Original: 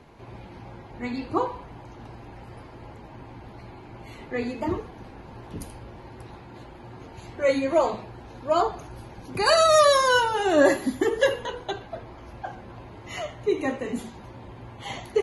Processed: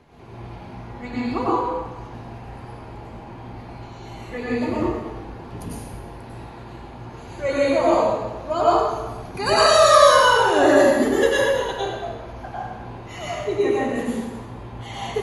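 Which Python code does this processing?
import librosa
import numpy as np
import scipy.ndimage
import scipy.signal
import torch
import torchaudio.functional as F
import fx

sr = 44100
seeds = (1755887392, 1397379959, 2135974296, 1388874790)

y = fx.spec_repair(x, sr, seeds[0], start_s=3.85, length_s=0.26, low_hz=2800.0, high_hz=7500.0, source='after')
y = fx.high_shelf(y, sr, hz=7300.0, db=8.0, at=(11.02, 11.92))
y = fx.rev_plate(y, sr, seeds[1], rt60_s=1.2, hf_ratio=0.8, predelay_ms=85, drr_db=-7.5)
y = y * librosa.db_to_amplitude(-3.0)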